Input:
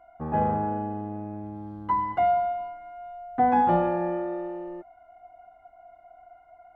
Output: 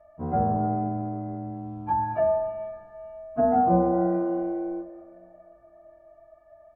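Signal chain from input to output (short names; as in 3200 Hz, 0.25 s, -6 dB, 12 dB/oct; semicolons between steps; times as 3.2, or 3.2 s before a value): inharmonic rescaling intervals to 91%; low shelf 260 Hz +6 dB; treble ducked by the level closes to 1200 Hz, closed at -20 dBFS; doubler 27 ms -11 dB; on a send: reverb RT60 2.4 s, pre-delay 0.122 s, DRR 14 dB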